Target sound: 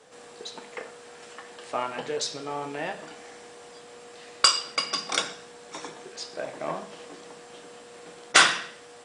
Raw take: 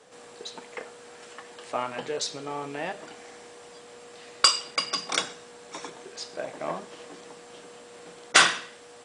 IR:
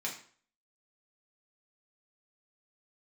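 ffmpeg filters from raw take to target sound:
-filter_complex "[0:a]asplit=2[a][b];[1:a]atrim=start_sample=2205,asetrate=33075,aresample=44100,adelay=14[c];[b][c]afir=irnorm=-1:irlink=0,volume=-13dB[d];[a][d]amix=inputs=2:normalize=0"

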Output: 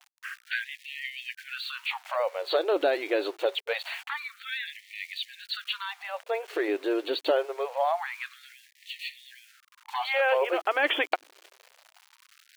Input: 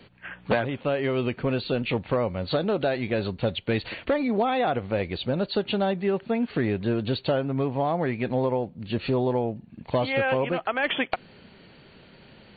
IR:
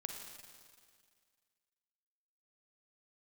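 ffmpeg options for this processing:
-af "aeval=exprs='val(0)*gte(abs(val(0)),0.00596)':c=same,afftfilt=real='re*gte(b*sr/1024,270*pow(1800/270,0.5+0.5*sin(2*PI*0.25*pts/sr)))':imag='im*gte(b*sr/1024,270*pow(1800/270,0.5+0.5*sin(2*PI*0.25*pts/sr)))':win_size=1024:overlap=0.75,volume=1dB"

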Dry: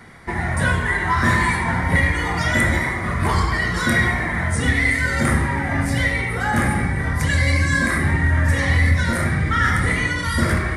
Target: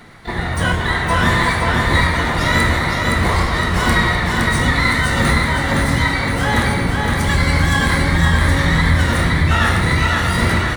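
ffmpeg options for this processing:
-filter_complex "[0:a]asplit=4[a][b][c][d];[b]asetrate=22050,aresample=44100,atempo=2,volume=-9dB[e];[c]asetrate=29433,aresample=44100,atempo=1.49831,volume=-8dB[f];[d]asetrate=88200,aresample=44100,atempo=0.5,volume=-9dB[g];[a][e][f][g]amix=inputs=4:normalize=0,aecho=1:1:515|1030|1545|2060|2575|3090:0.708|0.333|0.156|0.0735|0.0345|0.0162"

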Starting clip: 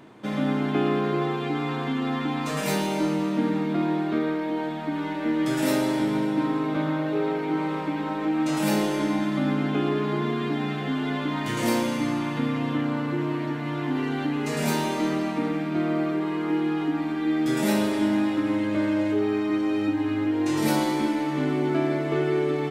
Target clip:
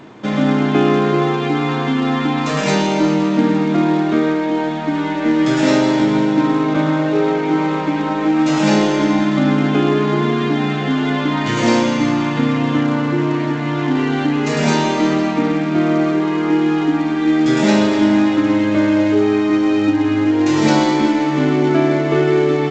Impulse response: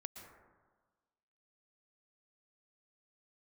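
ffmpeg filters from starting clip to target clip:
-filter_complex "[0:a]asplit=2[a][b];[b]acrusher=bits=3:mode=log:mix=0:aa=0.000001,volume=-9.5dB[c];[a][c]amix=inputs=2:normalize=0,volume=7dB" -ar 16000 -c:a g722

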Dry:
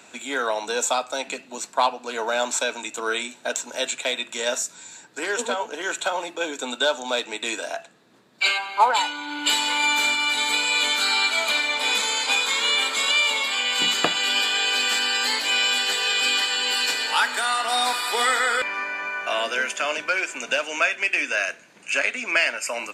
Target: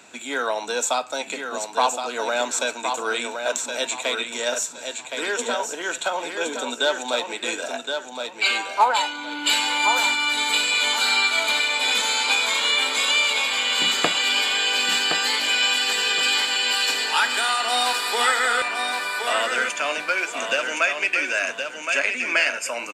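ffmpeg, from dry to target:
-af "aecho=1:1:1068|2136|3204|4272:0.501|0.14|0.0393|0.011"

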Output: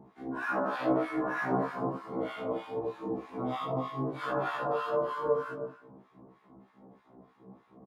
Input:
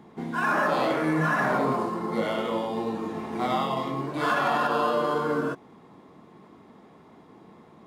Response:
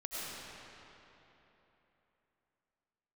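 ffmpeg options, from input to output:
-filter_complex "[0:a]asplit=2[a][b];[b]adelay=107,lowpass=f=2k:p=1,volume=-15dB,asplit=2[c][d];[d]adelay=107,lowpass=f=2k:p=1,volume=0.51,asplit=2[e][f];[f]adelay=107,lowpass=f=2k:p=1,volume=0.51,asplit=2[g][h];[h]adelay=107,lowpass=f=2k:p=1,volume=0.51,asplit=2[i][j];[j]adelay=107,lowpass=f=2k:p=1,volume=0.51[k];[a][c][e][g][i][k]amix=inputs=6:normalize=0,asplit=2[l][m];[1:a]atrim=start_sample=2205,afade=t=out:st=0.34:d=0.01,atrim=end_sample=15435[n];[m][n]afir=irnorm=-1:irlink=0,volume=-6dB[o];[l][o]amix=inputs=2:normalize=0,acrossover=split=1100[p][q];[p]aeval=exprs='val(0)*(1-1/2+1/2*cos(2*PI*3.2*n/s))':c=same[r];[q]aeval=exprs='val(0)*(1-1/2-1/2*cos(2*PI*3.2*n/s))':c=same[s];[r][s]amix=inputs=2:normalize=0,highshelf=f=2.1k:g=-12,bandreject=f=7.8k:w=21,afftfilt=real='re*1.73*eq(mod(b,3),0)':imag='im*1.73*eq(mod(b,3),0)':win_size=2048:overlap=0.75"

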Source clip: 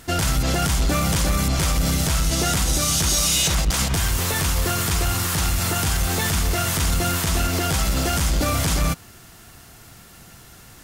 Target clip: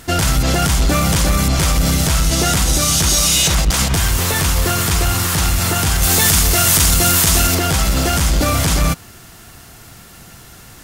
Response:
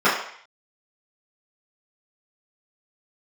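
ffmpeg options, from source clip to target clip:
-filter_complex "[0:a]asettb=1/sr,asplit=3[a][b][c];[a]atrim=end=6.024[d];[b]atrim=start=6.02:end=7.55,asetpts=PTS-STARTPTS,afade=t=in:d=0.004:c=qsin,afade=t=out:st=1.526:d=0.004:c=qsin,highshelf=f=4k:g=9[e];[c]atrim=start=7.546[f];[d][e]acrossfade=d=0.004:c1=hsin:c2=qsin[g];[g][f]acrossfade=d=0.004:c1=qsin:c2=hsin,volume=5.5dB"

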